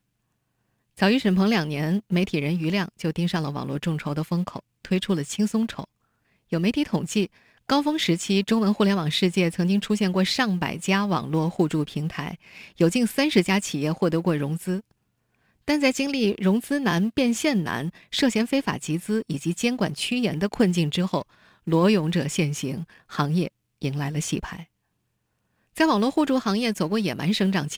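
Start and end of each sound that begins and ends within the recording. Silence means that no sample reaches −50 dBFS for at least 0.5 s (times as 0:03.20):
0:00.97–0:05.85
0:06.51–0:14.91
0:15.68–0:24.65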